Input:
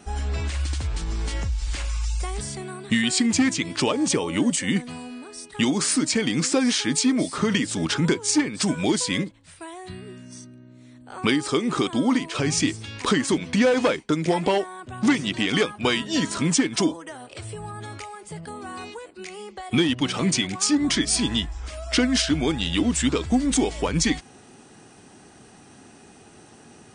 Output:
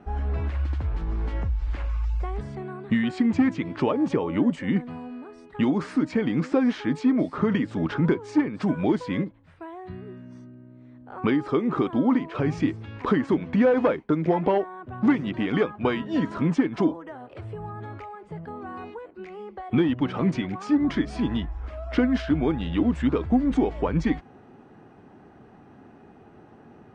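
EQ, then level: low-pass 1.4 kHz 12 dB/octave; 0.0 dB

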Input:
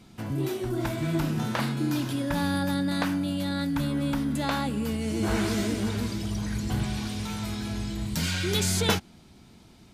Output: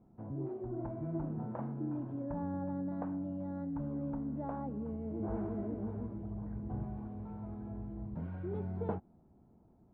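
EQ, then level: four-pole ladder low-pass 1 kHz, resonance 25%; -5.0 dB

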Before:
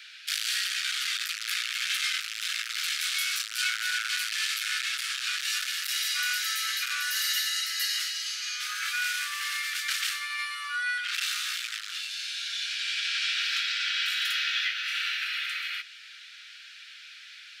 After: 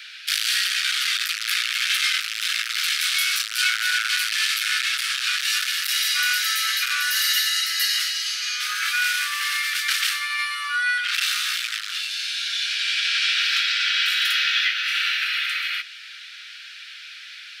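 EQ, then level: peaking EQ 7.1 kHz -3.5 dB 0.43 oct; +7.5 dB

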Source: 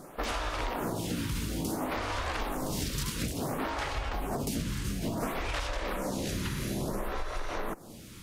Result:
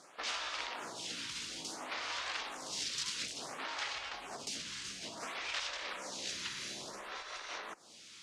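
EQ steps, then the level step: band-pass filter 6.6 kHz, Q 0.85; distance through air 110 m; +8.0 dB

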